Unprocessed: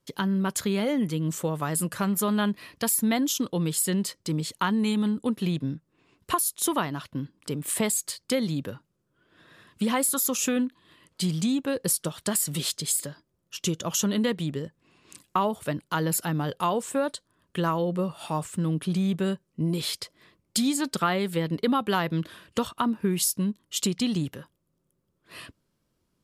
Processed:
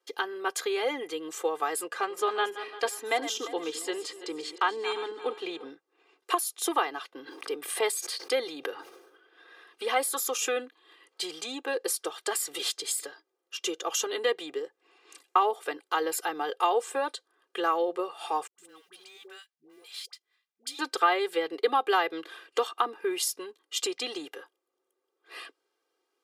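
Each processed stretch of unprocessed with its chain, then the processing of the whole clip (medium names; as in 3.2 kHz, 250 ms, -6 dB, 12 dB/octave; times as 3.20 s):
1.81–5.70 s: backward echo that repeats 174 ms, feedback 53%, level -12 dB + distance through air 53 m
7.15–10.08 s: band-stop 7.4 kHz, Q 5.6 + decay stretcher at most 54 dB/s
18.47–20.79 s: companding laws mixed up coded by A + amplifier tone stack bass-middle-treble 5-5-5 + phase dispersion highs, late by 112 ms, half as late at 520 Hz
whole clip: high-pass 420 Hz 24 dB/octave; treble shelf 6.4 kHz -11.5 dB; comb 2.5 ms, depth 92%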